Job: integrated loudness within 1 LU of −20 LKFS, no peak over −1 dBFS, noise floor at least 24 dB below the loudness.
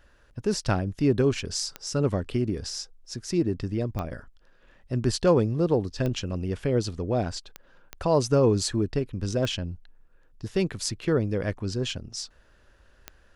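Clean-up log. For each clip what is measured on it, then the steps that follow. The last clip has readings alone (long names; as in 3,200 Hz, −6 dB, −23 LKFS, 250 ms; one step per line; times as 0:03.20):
number of clicks 7; integrated loudness −27.0 LKFS; sample peak −8.5 dBFS; target loudness −20.0 LKFS
→ click removal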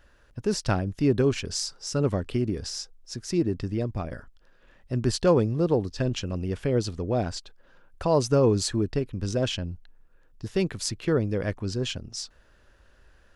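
number of clicks 0; integrated loudness −27.0 LKFS; sample peak −8.5 dBFS; target loudness −20.0 LKFS
→ level +7 dB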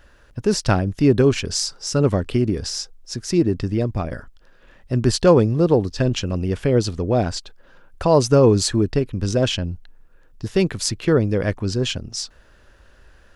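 integrated loudness −20.0 LKFS; sample peak −1.5 dBFS; background noise floor −52 dBFS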